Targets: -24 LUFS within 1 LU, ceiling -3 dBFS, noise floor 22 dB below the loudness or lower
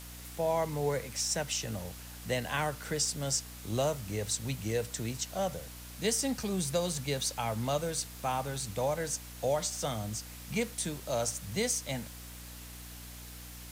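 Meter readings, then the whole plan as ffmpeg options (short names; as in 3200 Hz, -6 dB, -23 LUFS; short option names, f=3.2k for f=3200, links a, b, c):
hum 60 Hz; harmonics up to 300 Hz; hum level -46 dBFS; noise floor -47 dBFS; noise floor target -55 dBFS; loudness -33.0 LUFS; peak -17.5 dBFS; loudness target -24.0 LUFS
-> -af "bandreject=f=60:t=h:w=4,bandreject=f=120:t=h:w=4,bandreject=f=180:t=h:w=4,bandreject=f=240:t=h:w=4,bandreject=f=300:t=h:w=4"
-af "afftdn=nr=8:nf=-47"
-af "volume=9dB"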